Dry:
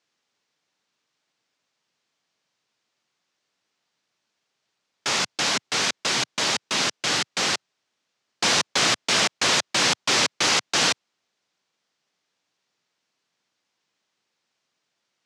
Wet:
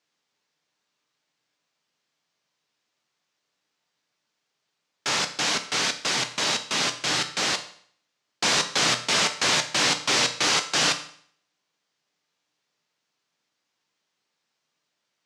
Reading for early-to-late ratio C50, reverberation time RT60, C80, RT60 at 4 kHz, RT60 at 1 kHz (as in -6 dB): 12.0 dB, 0.55 s, 15.0 dB, 0.55 s, 0.55 s